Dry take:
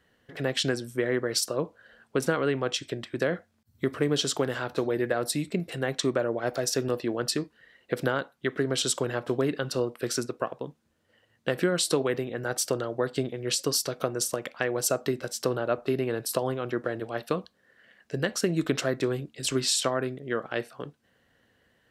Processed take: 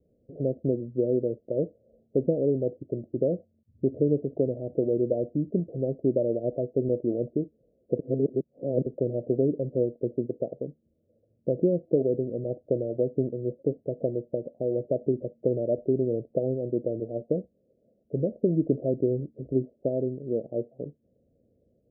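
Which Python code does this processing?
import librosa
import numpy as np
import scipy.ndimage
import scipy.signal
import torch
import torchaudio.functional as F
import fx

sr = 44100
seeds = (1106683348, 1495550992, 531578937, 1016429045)

y = fx.edit(x, sr, fx.reverse_span(start_s=7.99, length_s=0.87), tone=tone)
y = scipy.signal.sosfilt(scipy.signal.butter(12, 630.0, 'lowpass', fs=sr, output='sos'), y)
y = y * librosa.db_to_amplitude(2.5)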